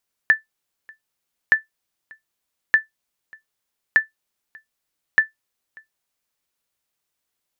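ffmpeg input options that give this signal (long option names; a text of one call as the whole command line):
ffmpeg -f lavfi -i "aevalsrc='0.562*(sin(2*PI*1760*mod(t,1.22))*exp(-6.91*mod(t,1.22)/0.14)+0.0376*sin(2*PI*1760*max(mod(t,1.22)-0.59,0))*exp(-6.91*max(mod(t,1.22)-0.59,0)/0.14))':duration=6.1:sample_rate=44100" out.wav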